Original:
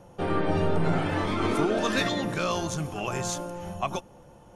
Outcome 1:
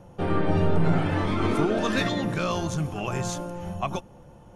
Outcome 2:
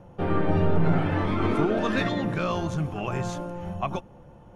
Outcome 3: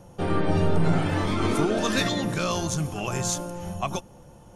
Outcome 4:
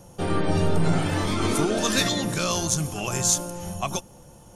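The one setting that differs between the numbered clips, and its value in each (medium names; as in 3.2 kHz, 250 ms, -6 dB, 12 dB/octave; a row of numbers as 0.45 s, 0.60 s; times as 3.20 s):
tone controls, treble: -3 dB, -13 dB, +6 dB, +15 dB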